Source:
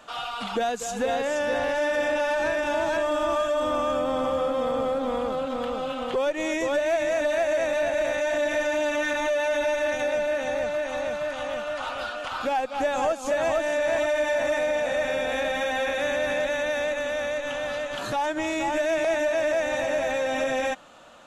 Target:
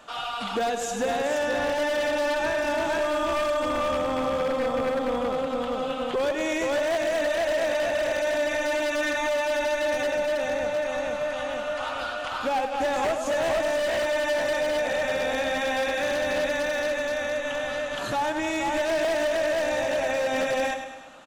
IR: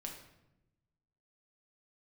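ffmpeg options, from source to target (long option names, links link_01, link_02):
-filter_complex "[0:a]asplit=2[link_01][link_02];[link_02]aecho=0:1:103|206|309|412|515|618|721:0.355|0.199|0.111|0.0623|0.0349|0.0195|0.0109[link_03];[link_01][link_03]amix=inputs=2:normalize=0,aeval=exprs='0.1*(abs(mod(val(0)/0.1+3,4)-2)-1)':channel_layout=same,asplit=2[link_04][link_05];[link_05]aecho=0:1:92:0.178[link_06];[link_04][link_06]amix=inputs=2:normalize=0"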